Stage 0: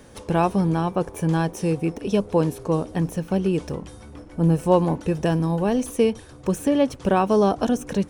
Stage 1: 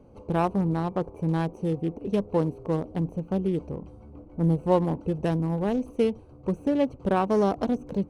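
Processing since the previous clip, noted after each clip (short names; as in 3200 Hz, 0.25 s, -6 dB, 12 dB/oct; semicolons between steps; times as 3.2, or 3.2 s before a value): Wiener smoothing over 25 samples; gain -4 dB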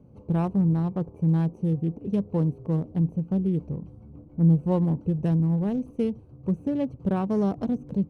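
bell 140 Hz +15 dB 2 oct; gain -9 dB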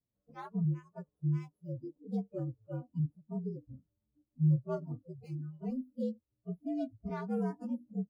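inharmonic rescaling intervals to 118%; spectral noise reduction 28 dB; gain -8 dB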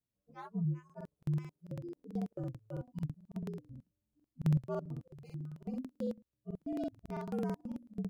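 crackling interface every 0.11 s, samples 2048, repeat, from 0.85; gain -2.5 dB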